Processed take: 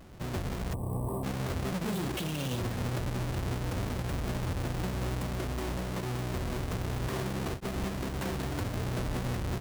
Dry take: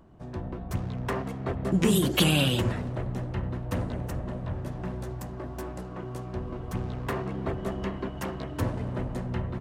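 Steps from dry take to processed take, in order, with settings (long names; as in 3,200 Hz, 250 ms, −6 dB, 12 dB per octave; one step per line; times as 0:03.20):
each half-wave held at its own peak
downward compressor 6 to 1, threshold −29 dBFS, peak gain reduction 15 dB
brickwall limiter −28.5 dBFS, peak gain reduction 31.5 dB
gain on a spectral selection 0:00.74–0:01.24, 1,200–7,800 Hz −27 dB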